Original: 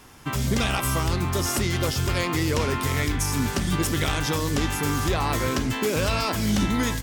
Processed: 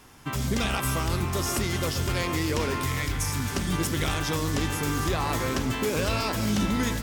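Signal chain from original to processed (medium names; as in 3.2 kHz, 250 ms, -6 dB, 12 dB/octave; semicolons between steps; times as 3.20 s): 2.85–3.52 s: peaking EQ 390 Hz -14.5 dB 0.88 oct; echo whose repeats swap between lows and highs 134 ms, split 1.9 kHz, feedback 83%, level -11 dB; trim -3 dB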